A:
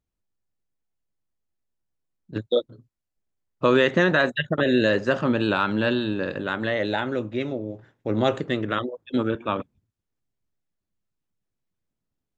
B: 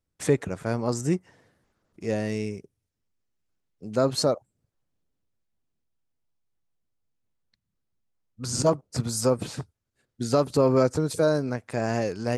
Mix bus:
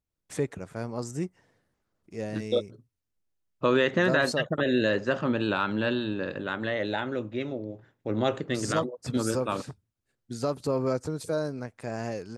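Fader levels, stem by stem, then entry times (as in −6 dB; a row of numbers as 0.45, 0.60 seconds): −4.5, −7.0 decibels; 0.00, 0.10 seconds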